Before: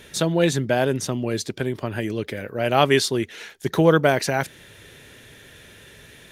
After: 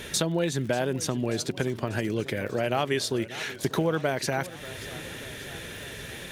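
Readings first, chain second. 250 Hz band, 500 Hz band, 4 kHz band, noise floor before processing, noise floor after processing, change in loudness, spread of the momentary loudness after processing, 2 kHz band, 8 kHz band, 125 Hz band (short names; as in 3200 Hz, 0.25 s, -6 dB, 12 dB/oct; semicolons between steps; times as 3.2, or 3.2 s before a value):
-5.5 dB, -7.0 dB, -4.5 dB, -48 dBFS, -41 dBFS, -7.5 dB, 11 LU, -5.5 dB, -2.0 dB, -5.5 dB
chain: compressor 4:1, threshold -33 dBFS, peak gain reduction 18.5 dB; crackle 44/s -44 dBFS; warbling echo 0.588 s, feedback 65%, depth 138 cents, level -17 dB; gain +7 dB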